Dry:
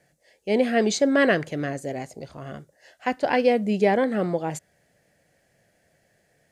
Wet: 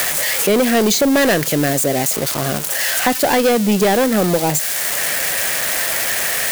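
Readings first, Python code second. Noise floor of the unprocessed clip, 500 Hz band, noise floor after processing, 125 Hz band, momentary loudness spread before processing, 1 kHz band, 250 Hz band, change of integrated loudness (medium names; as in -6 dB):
-67 dBFS, +6.0 dB, -21 dBFS, +10.0 dB, 18 LU, +8.0 dB, +7.5 dB, +7.5 dB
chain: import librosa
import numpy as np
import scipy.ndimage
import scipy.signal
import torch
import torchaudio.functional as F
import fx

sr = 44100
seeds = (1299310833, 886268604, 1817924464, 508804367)

y = x + 0.5 * 10.0 ** (-20.0 / 20.0) * np.diff(np.sign(x), prepend=np.sign(x[:1]))
y = fx.leveller(y, sr, passes=3)
y = fx.band_squash(y, sr, depth_pct=70)
y = y * librosa.db_to_amplitude(-1.0)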